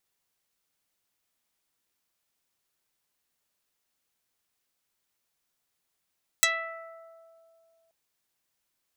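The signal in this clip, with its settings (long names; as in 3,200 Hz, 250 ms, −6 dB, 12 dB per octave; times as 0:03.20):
Karplus-Strong string E5, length 1.48 s, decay 2.66 s, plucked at 0.13, dark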